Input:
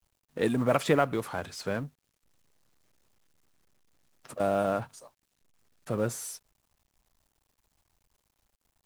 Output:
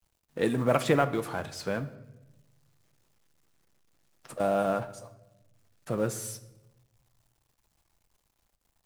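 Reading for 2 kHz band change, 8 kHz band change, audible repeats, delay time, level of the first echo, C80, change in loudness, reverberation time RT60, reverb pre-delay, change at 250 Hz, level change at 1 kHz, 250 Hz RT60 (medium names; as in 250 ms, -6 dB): 0.0 dB, +0.5 dB, no echo, no echo, no echo, 17.0 dB, +0.5 dB, 1.0 s, 6 ms, 0.0 dB, +0.5 dB, 1.5 s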